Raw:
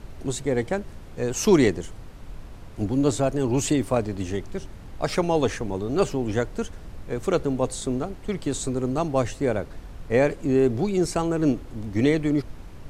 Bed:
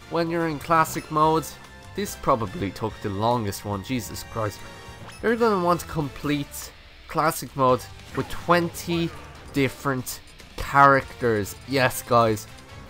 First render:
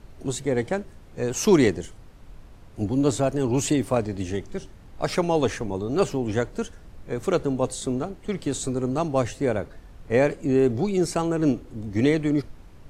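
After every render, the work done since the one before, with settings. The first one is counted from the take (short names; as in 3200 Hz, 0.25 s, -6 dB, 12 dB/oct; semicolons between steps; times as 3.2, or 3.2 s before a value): noise print and reduce 6 dB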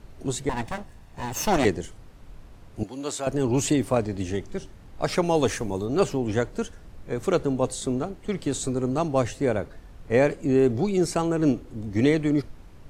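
0.49–1.65 minimum comb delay 1.1 ms; 2.83–3.27 HPF 1200 Hz 6 dB/oct; 5.24–5.85 high shelf 8900 Hz -> 6100 Hz +11.5 dB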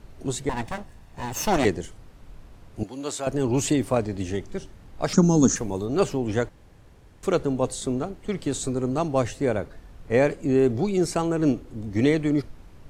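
5.13–5.56 EQ curve 110 Hz 0 dB, 200 Hz +15 dB, 290 Hz +9 dB, 430 Hz -3 dB, 660 Hz -8 dB, 1400 Hz 0 dB, 2200 Hz -19 dB, 4800 Hz -1 dB, 6800 Hz +15 dB, 11000 Hz -26 dB; 6.49–7.23 room tone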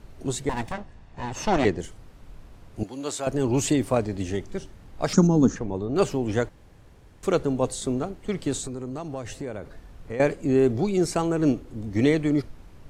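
0.72–1.79 air absorption 91 m; 5.27–5.96 tape spacing loss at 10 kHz 23 dB; 8.6–10.2 compressor 4:1, threshold -30 dBFS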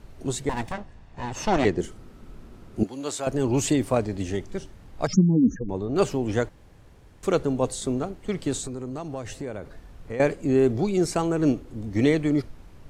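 1.77–2.87 small resonant body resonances 230/360/1300 Hz, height 9 dB, ringing for 35 ms; 5.07–5.69 spectral contrast raised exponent 2.3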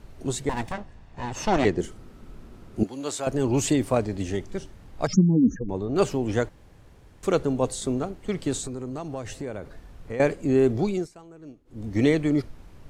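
10.89–11.85 dip -22.5 dB, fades 0.20 s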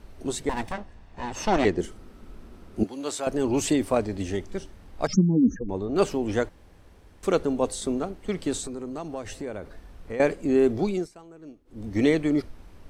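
bell 130 Hz -12.5 dB 0.33 oct; notch 6900 Hz, Q 15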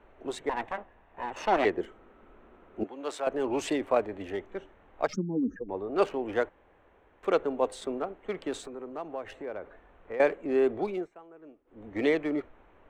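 Wiener smoothing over 9 samples; three-band isolator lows -16 dB, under 360 Hz, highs -12 dB, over 3600 Hz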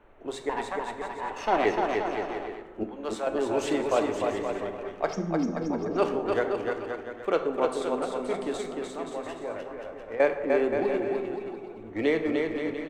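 bouncing-ball echo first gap 0.3 s, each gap 0.75×, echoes 5; plate-style reverb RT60 1.1 s, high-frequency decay 0.55×, DRR 6.5 dB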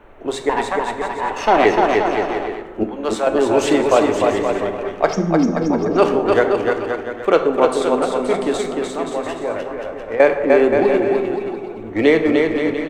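gain +11.5 dB; limiter -2 dBFS, peak gain reduction 3 dB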